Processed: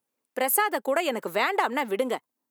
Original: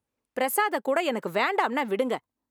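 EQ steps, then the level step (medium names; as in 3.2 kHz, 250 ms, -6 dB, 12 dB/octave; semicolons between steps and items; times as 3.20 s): high-pass 220 Hz 12 dB/octave; treble shelf 8.5 kHz +10 dB; 0.0 dB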